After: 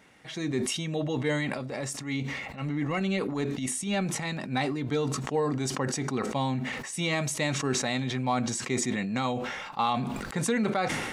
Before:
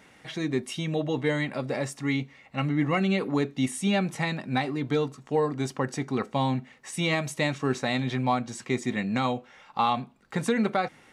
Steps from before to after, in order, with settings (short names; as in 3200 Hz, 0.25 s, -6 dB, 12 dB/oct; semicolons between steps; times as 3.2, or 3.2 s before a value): dynamic EQ 7000 Hz, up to +5 dB, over -52 dBFS, Q 0.98; 1.54–4.37 transient shaper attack -10 dB, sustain -6 dB; sustainer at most 32 dB/s; gain -3 dB